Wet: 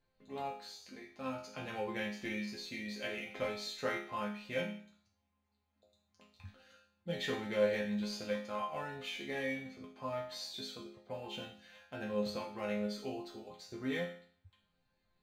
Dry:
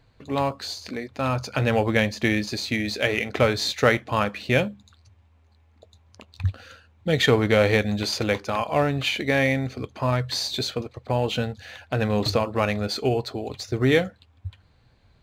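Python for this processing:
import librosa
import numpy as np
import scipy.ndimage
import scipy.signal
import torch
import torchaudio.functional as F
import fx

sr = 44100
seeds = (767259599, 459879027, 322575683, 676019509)

y = fx.resonator_bank(x, sr, root=53, chord='minor', decay_s=0.52)
y = F.gain(torch.from_numpy(y), 2.5).numpy()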